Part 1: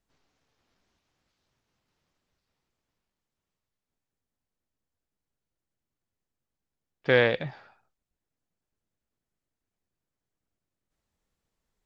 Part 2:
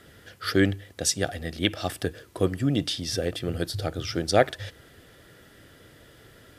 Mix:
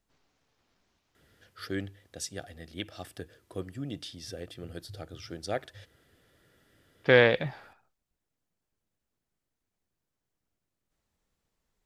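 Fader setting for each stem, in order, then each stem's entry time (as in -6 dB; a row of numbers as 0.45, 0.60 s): +1.5, -13.0 dB; 0.00, 1.15 s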